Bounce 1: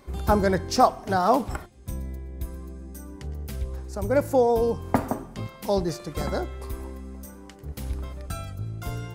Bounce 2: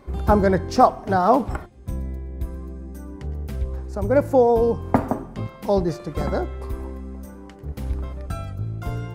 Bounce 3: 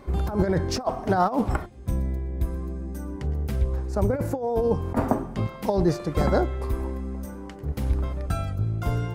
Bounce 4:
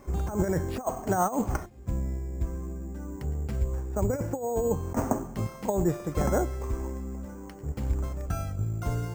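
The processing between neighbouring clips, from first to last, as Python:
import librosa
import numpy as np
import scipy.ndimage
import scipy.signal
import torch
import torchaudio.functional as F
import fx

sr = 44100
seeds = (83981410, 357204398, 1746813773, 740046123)

y1 = fx.high_shelf(x, sr, hz=2800.0, db=-11.5)
y1 = F.gain(torch.from_numpy(y1), 4.5).numpy()
y2 = fx.over_compress(y1, sr, threshold_db=-20.0, ratio=-0.5)
y3 = np.repeat(scipy.signal.resample_poly(y2, 1, 6), 6)[:len(y2)]
y3 = F.gain(torch.from_numpy(y3), -4.0).numpy()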